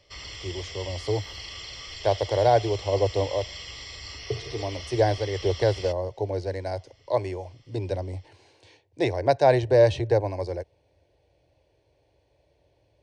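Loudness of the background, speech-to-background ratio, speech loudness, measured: -38.0 LUFS, 12.0 dB, -26.0 LUFS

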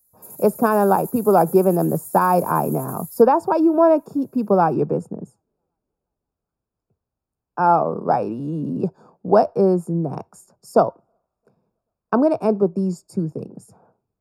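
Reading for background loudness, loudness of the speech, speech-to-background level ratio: -36.0 LUFS, -19.5 LUFS, 16.5 dB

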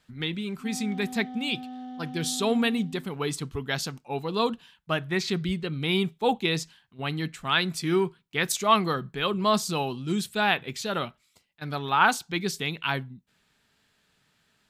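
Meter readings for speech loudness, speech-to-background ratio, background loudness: -27.5 LUFS, 13.0 dB, -40.5 LUFS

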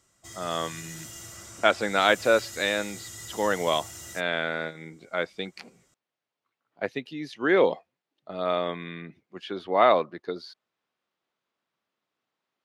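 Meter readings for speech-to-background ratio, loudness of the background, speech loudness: 14.0 dB, -40.5 LUFS, -26.5 LUFS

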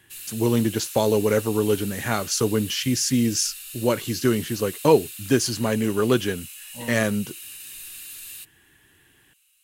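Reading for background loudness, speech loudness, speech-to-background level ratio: -36.0 LUFS, -23.0 LUFS, 13.0 dB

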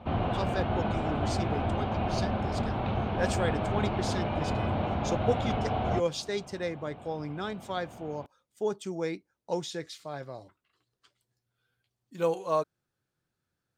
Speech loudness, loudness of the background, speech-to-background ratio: -35.0 LUFS, -30.5 LUFS, -4.5 dB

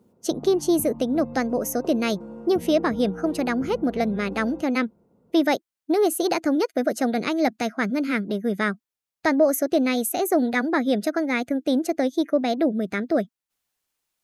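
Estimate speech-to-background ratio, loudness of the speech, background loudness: 15.0 dB, -23.5 LUFS, -38.5 LUFS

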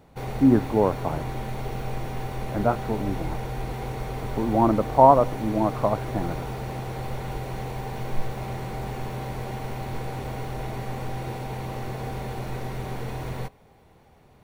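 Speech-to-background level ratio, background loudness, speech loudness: 10.0 dB, -33.0 LUFS, -23.0 LUFS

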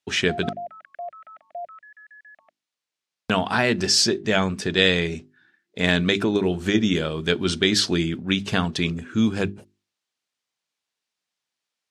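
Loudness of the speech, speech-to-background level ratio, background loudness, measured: -22.0 LUFS, 16.0 dB, -38.0 LUFS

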